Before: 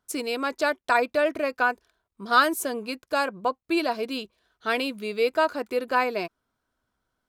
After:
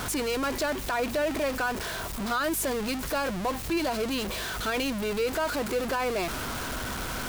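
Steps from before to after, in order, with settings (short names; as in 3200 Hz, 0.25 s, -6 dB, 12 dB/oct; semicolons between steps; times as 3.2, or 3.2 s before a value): zero-crossing step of -21 dBFS; hum 50 Hz, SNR 16 dB; limiter -14 dBFS, peak gain reduction 8.5 dB; gain -6 dB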